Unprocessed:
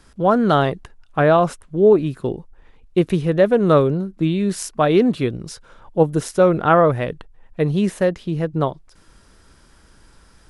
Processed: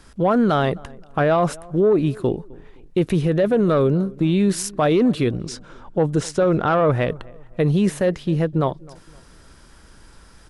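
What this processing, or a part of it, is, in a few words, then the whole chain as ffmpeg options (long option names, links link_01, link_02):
soft clipper into limiter: -filter_complex "[0:a]asoftclip=type=tanh:threshold=-5dB,alimiter=limit=-13.5dB:level=0:latency=1:release=27,asettb=1/sr,asplit=3[link_01][link_02][link_03];[link_01]atrim=end=5.414[link_04];[link_02]atrim=start=5.41:end=7.1,asetpts=PTS-STARTPTS,afade=type=in:duration=0.004:curve=qsin,afade=type=out:start_time=1.686:duration=0.004:curve=qsin,lowpass=frequency=8600:width=0.5412,lowpass=frequency=8600:width=1.3066[link_05];[link_03]atrim=start=7.096[link_06];[link_04][link_05]acrossfade=duration=0.004:curve1=hsin:curve2=qsin[link_07];[link_07][link_06]acrossfade=duration=0.004:curve1=qsin:curve2=hsin,asplit=2[link_08][link_09];[link_09]adelay=259,lowpass=frequency=1300:poles=1,volume=-22.5dB,asplit=2[link_10][link_11];[link_11]adelay=259,lowpass=frequency=1300:poles=1,volume=0.39,asplit=2[link_12][link_13];[link_13]adelay=259,lowpass=frequency=1300:poles=1,volume=0.39[link_14];[link_08][link_10][link_12][link_14]amix=inputs=4:normalize=0,volume=3dB"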